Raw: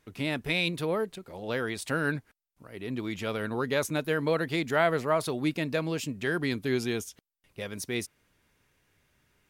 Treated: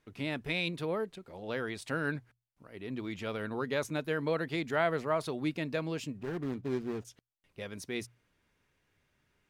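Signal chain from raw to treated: 6.17–7.05 median filter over 41 samples; high shelf 8500 Hz -10.5 dB; notches 60/120 Hz; gain -4.5 dB

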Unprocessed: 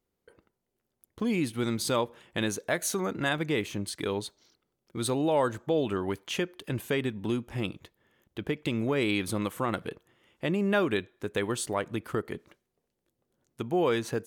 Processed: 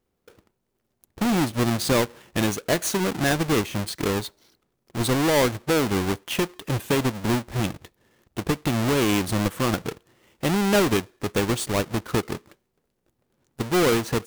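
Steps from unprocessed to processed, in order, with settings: half-waves squared off; gain +1.5 dB

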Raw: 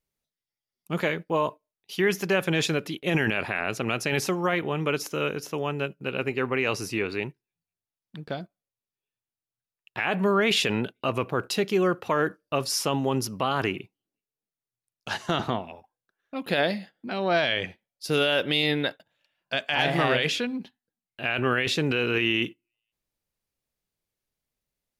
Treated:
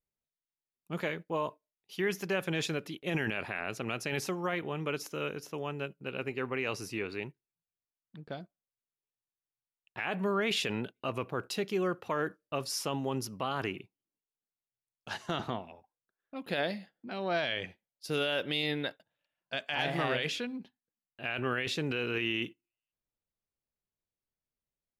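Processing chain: mismatched tape noise reduction decoder only; gain -8 dB

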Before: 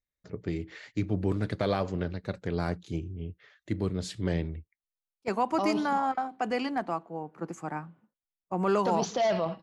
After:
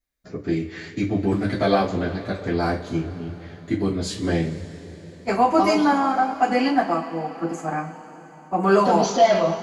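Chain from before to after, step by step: two-slope reverb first 0.25 s, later 4.2 s, from -22 dB, DRR -8.5 dB

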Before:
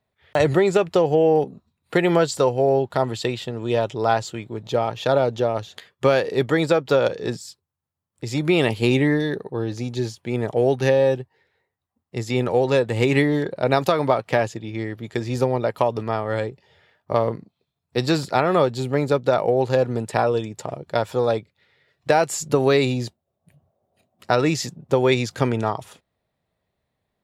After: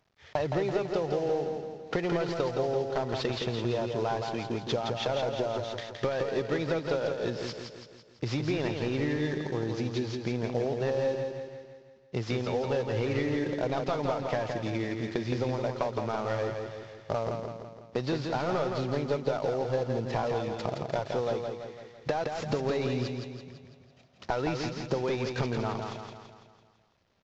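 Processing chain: CVSD 32 kbps; compressor 6:1, threshold -31 dBFS, peak gain reduction 16 dB; on a send: feedback echo 0.167 s, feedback 52%, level -5 dB; on the sum: gain +2.5 dB

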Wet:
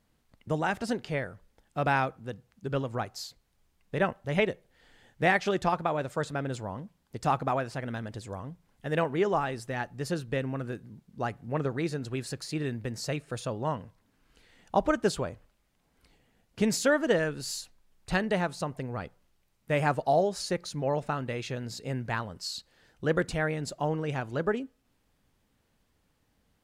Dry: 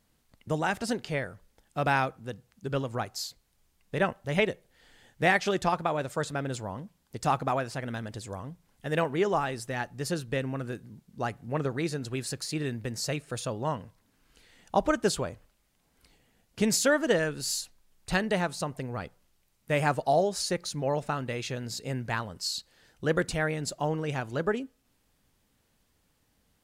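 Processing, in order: high shelf 4100 Hz -7 dB

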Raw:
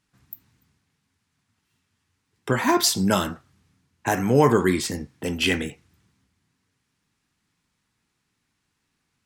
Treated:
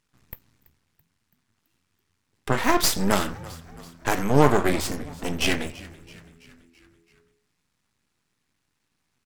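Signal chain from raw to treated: half-wave rectifier; frequency-shifting echo 0.332 s, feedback 57%, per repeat -84 Hz, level -19.5 dB; gain +3 dB

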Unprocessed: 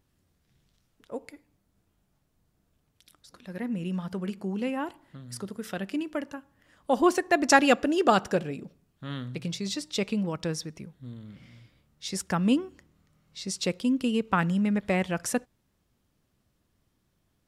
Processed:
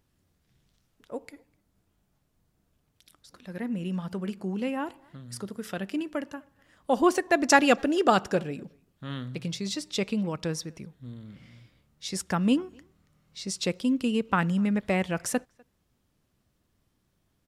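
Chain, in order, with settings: speakerphone echo 0.25 s, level -28 dB; wow and flutter 27 cents

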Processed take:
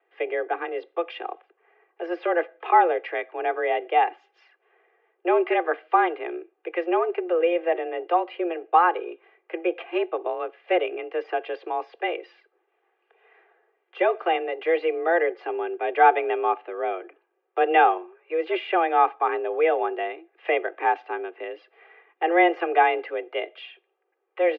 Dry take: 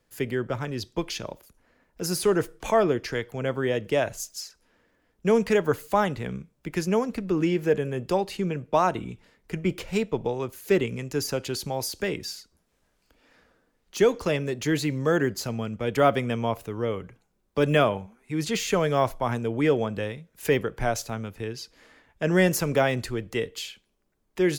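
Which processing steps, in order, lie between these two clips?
mistuned SSB +170 Hz 200–2600 Hz; comb 2.5 ms, depth 69%; gain +1.5 dB

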